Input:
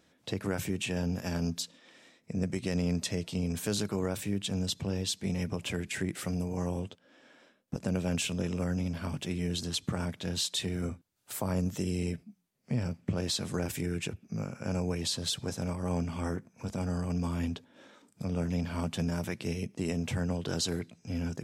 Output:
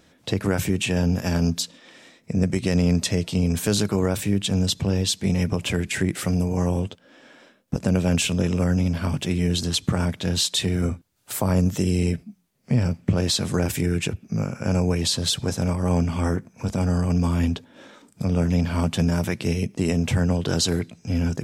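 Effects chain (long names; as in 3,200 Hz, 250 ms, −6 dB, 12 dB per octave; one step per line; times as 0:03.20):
low-shelf EQ 79 Hz +7 dB
level +9 dB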